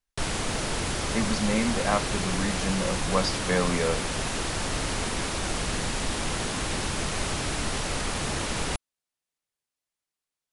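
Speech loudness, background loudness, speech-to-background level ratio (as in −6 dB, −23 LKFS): −29.0 LKFS, −29.0 LKFS, 0.0 dB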